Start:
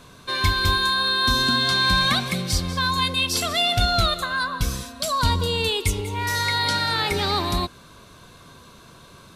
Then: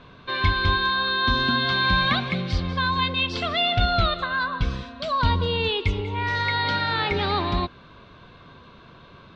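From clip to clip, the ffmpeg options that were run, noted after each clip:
ffmpeg -i in.wav -af "lowpass=frequency=3600:width=0.5412,lowpass=frequency=3600:width=1.3066" out.wav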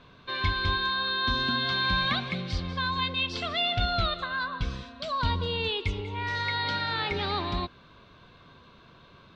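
ffmpeg -i in.wav -af "highshelf=frequency=4200:gain=6.5,volume=-6.5dB" out.wav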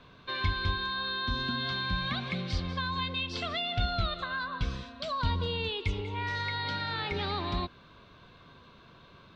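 ffmpeg -i in.wav -filter_complex "[0:a]acrossover=split=250[link_01][link_02];[link_02]acompressor=threshold=-29dB:ratio=6[link_03];[link_01][link_03]amix=inputs=2:normalize=0,volume=-1dB" out.wav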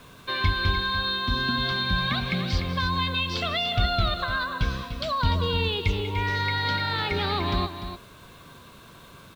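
ffmpeg -i in.wav -af "aecho=1:1:296:0.335,acrusher=bits=9:mix=0:aa=0.000001,volume=6dB" out.wav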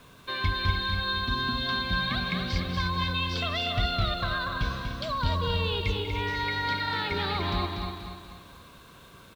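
ffmpeg -i in.wav -af "aecho=1:1:241|482|723|964|1205:0.531|0.228|0.0982|0.0422|0.0181,volume=-4dB" out.wav

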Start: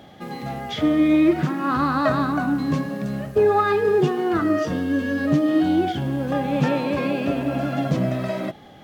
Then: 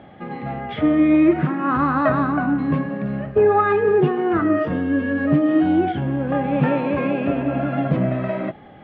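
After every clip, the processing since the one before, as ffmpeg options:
ffmpeg -i in.wav -af "lowpass=frequency=2600:width=0.5412,lowpass=frequency=2600:width=1.3066,volume=2dB" out.wav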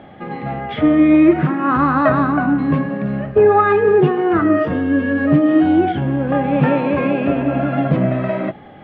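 ffmpeg -i in.wav -af "bandreject=frequency=60:width_type=h:width=6,bandreject=frequency=120:width_type=h:width=6,bandreject=frequency=180:width_type=h:width=6,bandreject=frequency=240:width_type=h:width=6,volume=4dB" out.wav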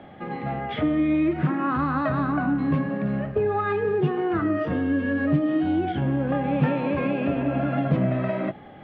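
ffmpeg -i in.wav -filter_complex "[0:a]acrossover=split=190|3000[link_01][link_02][link_03];[link_02]acompressor=threshold=-18dB:ratio=6[link_04];[link_01][link_04][link_03]amix=inputs=3:normalize=0,volume=-4.5dB" out.wav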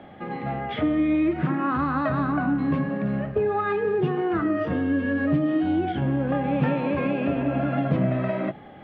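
ffmpeg -i in.wav -af "bandreject=frequency=50:width_type=h:width=6,bandreject=frequency=100:width_type=h:width=6,bandreject=frequency=150:width_type=h:width=6" out.wav

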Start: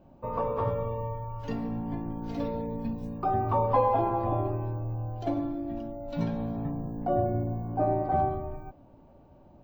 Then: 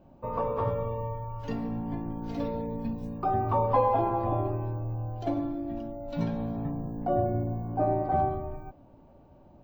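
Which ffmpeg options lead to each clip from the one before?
ffmpeg -i in.wav -af anull out.wav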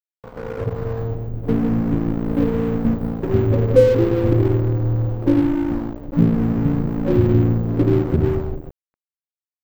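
ffmpeg -i in.wav -af "dynaudnorm=framelen=360:gausssize=5:maxgain=9dB,afftfilt=real='re*(1-between(b*sr/4096,560,11000))':imag='im*(1-between(b*sr/4096,560,11000))':win_size=4096:overlap=0.75,aeval=exprs='sgn(val(0))*max(abs(val(0))-0.0188,0)':channel_layout=same,volume=7.5dB" out.wav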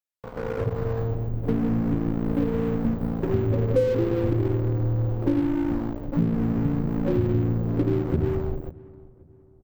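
ffmpeg -i in.wav -filter_complex "[0:a]acompressor=threshold=-22dB:ratio=2.5,asplit=2[link_01][link_02];[link_02]adelay=535,lowpass=frequency=1500:poles=1,volume=-21dB,asplit=2[link_03][link_04];[link_04]adelay=535,lowpass=frequency=1500:poles=1,volume=0.4,asplit=2[link_05][link_06];[link_06]adelay=535,lowpass=frequency=1500:poles=1,volume=0.4[link_07];[link_01][link_03][link_05][link_07]amix=inputs=4:normalize=0" out.wav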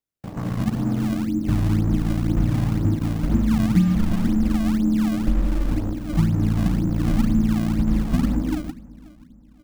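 ffmpeg -i in.wav -filter_complex "[0:a]afreqshift=-330,asplit=2[link_01][link_02];[link_02]acrusher=samples=28:mix=1:aa=0.000001:lfo=1:lforange=44.8:lforate=2,volume=-4.5dB[link_03];[link_01][link_03]amix=inputs=2:normalize=0" out.wav

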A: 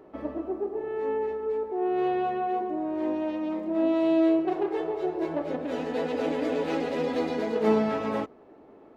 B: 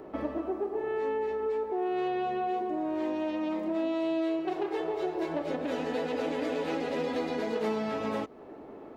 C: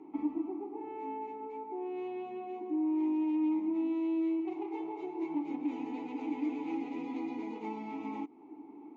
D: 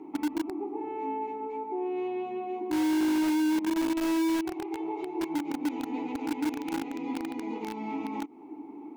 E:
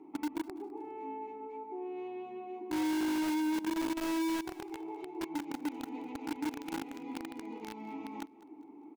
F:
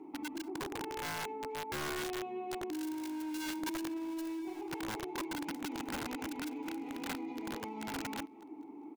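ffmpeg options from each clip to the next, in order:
ffmpeg -i in.wav -filter_complex "[0:a]acrossover=split=750|2700[link_01][link_02][link_03];[link_01]acompressor=threshold=-38dB:ratio=4[link_04];[link_02]acompressor=threshold=-46dB:ratio=4[link_05];[link_03]acompressor=threshold=-55dB:ratio=4[link_06];[link_04][link_05][link_06]amix=inputs=3:normalize=0,volume=6dB" out.wav
ffmpeg -i in.wav -filter_complex "[0:a]asplit=3[link_01][link_02][link_03];[link_01]bandpass=frequency=300:width_type=q:width=8,volume=0dB[link_04];[link_02]bandpass=frequency=870:width_type=q:width=8,volume=-6dB[link_05];[link_03]bandpass=frequency=2240:width_type=q:width=8,volume=-9dB[link_06];[link_04][link_05][link_06]amix=inputs=3:normalize=0,equalizer=frequency=6600:width_type=o:width=0.35:gain=12.5,volume=4.5dB" out.wav
ffmpeg -i in.wav -filter_complex "[0:a]asplit=2[link_01][link_02];[link_02]acrusher=bits=4:mix=0:aa=0.000001,volume=-4dB[link_03];[link_01][link_03]amix=inputs=2:normalize=0,alimiter=level_in=4dB:limit=-24dB:level=0:latency=1:release=123,volume=-4dB,volume=6.5dB" out.wav
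ffmpeg -i in.wav -filter_complex "[0:a]asplit=2[link_01][link_02];[link_02]acrusher=bits=3:mix=0:aa=0.000001,volume=-12dB[link_03];[link_01][link_03]amix=inputs=2:normalize=0,aecho=1:1:204|408|612:0.1|0.034|0.0116,volume=-8.5dB" out.wav
ffmpeg -i in.wav -af "aeval=exprs='(mod(63.1*val(0)+1,2)-1)/63.1':channel_layout=same,volume=3dB" out.wav

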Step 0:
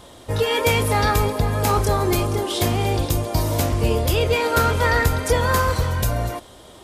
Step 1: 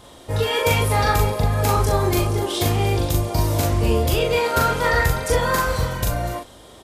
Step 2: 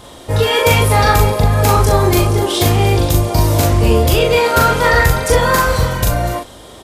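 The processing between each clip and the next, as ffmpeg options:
ffmpeg -i in.wav -filter_complex "[0:a]asplit=2[link_01][link_02];[link_02]adelay=40,volume=-2.5dB[link_03];[link_01][link_03]amix=inputs=2:normalize=0,volume=-2dB" out.wav
ffmpeg -i in.wav -af "acontrast=42,volume=2dB" out.wav

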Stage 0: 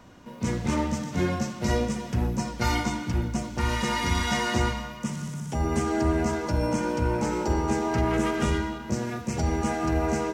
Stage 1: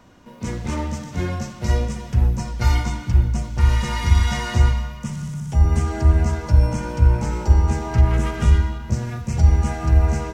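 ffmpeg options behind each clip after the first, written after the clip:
ffmpeg -i in.wav -af "asubboost=boost=8.5:cutoff=100" out.wav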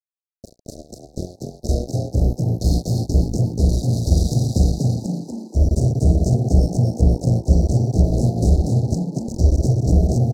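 ffmpeg -i in.wav -filter_complex "[0:a]acrusher=bits=2:mix=0:aa=0.5,asuperstop=centerf=1700:order=20:qfactor=0.51,asplit=2[link_01][link_02];[link_02]asplit=7[link_03][link_04][link_05][link_06][link_07][link_08][link_09];[link_03]adelay=241,afreqshift=53,volume=-3.5dB[link_10];[link_04]adelay=482,afreqshift=106,volume=-9.5dB[link_11];[link_05]adelay=723,afreqshift=159,volume=-15.5dB[link_12];[link_06]adelay=964,afreqshift=212,volume=-21.6dB[link_13];[link_07]adelay=1205,afreqshift=265,volume=-27.6dB[link_14];[link_08]adelay=1446,afreqshift=318,volume=-33.6dB[link_15];[link_09]adelay=1687,afreqshift=371,volume=-39.6dB[link_16];[link_10][link_11][link_12][link_13][link_14][link_15][link_16]amix=inputs=7:normalize=0[link_17];[link_01][link_17]amix=inputs=2:normalize=0,volume=-1.5dB" out.wav

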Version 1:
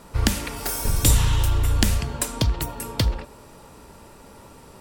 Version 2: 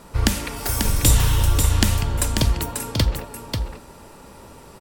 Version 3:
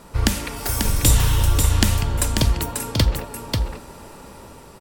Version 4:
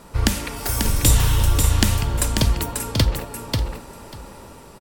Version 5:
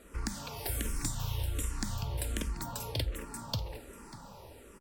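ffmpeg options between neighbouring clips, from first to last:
ffmpeg -i in.wav -af "aecho=1:1:540:0.531,volume=1.5dB" out.wav
ffmpeg -i in.wav -af "dynaudnorm=framelen=420:gausssize=5:maxgain=5dB" out.wav
ffmpeg -i in.wav -af "aecho=1:1:592:0.141" out.wav
ffmpeg -i in.wav -filter_complex "[0:a]acompressor=threshold=-21dB:ratio=6,asplit=2[link_01][link_02];[link_02]afreqshift=-1.3[link_03];[link_01][link_03]amix=inputs=2:normalize=1,volume=-7dB" out.wav

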